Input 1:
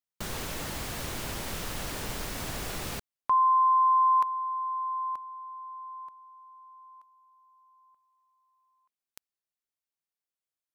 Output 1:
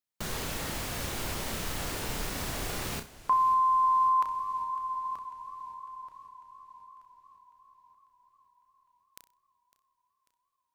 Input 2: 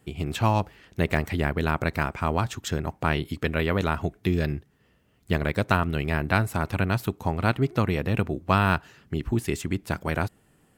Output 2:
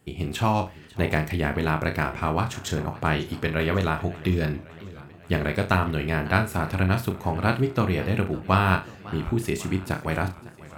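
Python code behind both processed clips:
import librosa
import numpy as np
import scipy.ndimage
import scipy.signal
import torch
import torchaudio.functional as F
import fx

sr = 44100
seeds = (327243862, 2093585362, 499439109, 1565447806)

y = fx.room_flutter(x, sr, wall_m=5.5, rt60_s=0.26)
y = fx.echo_warbled(y, sr, ms=549, feedback_pct=63, rate_hz=2.8, cents=168, wet_db=-19.0)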